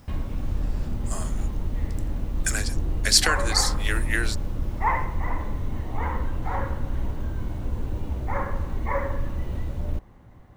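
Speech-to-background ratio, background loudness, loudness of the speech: 6.0 dB, −30.0 LKFS, −24.0 LKFS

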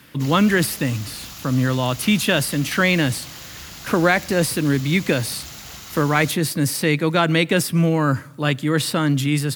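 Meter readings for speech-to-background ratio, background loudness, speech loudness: 15.5 dB, −35.5 LKFS, −20.0 LKFS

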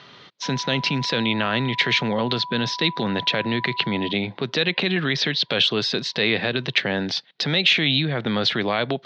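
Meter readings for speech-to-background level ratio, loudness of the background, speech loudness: 13.5 dB, −35.5 LKFS, −22.0 LKFS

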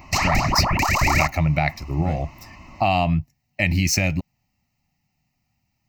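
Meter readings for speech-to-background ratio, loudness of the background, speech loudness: −2.0 dB, −21.0 LKFS, −23.0 LKFS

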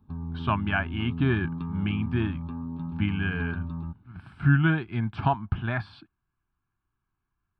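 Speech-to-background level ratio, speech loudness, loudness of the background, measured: 7.5 dB, −28.0 LKFS, −35.5 LKFS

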